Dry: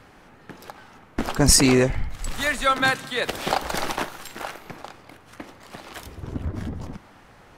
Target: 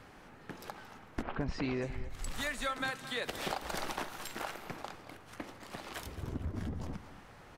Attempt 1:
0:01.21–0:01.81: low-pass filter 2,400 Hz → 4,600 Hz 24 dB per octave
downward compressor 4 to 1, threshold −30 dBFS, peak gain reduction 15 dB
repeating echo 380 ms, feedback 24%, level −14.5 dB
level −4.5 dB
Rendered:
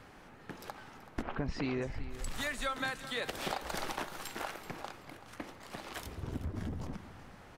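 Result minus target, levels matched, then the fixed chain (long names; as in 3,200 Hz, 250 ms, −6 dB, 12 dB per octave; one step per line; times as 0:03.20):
echo 155 ms late
0:01.21–0:01.81: low-pass filter 2,400 Hz → 4,600 Hz 24 dB per octave
downward compressor 4 to 1, threshold −30 dBFS, peak gain reduction 15 dB
repeating echo 225 ms, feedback 24%, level −14.5 dB
level −4.5 dB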